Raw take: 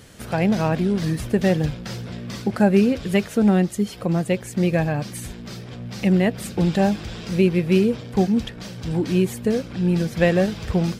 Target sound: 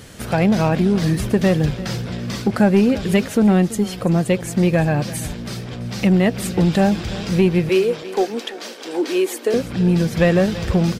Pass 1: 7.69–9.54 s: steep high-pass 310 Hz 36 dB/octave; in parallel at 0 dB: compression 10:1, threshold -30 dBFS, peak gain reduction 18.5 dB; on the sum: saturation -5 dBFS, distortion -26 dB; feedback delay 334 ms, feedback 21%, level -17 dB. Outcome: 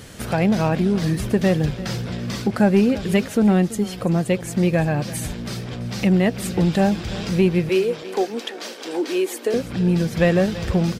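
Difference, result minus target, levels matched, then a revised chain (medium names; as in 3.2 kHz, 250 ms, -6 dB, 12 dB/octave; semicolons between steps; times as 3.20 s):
compression: peak gain reduction +10 dB
7.69–9.54 s: steep high-pass 310 Hz 36 dB/octave; in parallel at 0 dB: compression 10:1, threshold -19 dBFS, peak gain reduction 9 dB; on the sum: saturation -5 dBFS, distortion -23 dB; feedback delay 334 ms, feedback 21%, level -17 dB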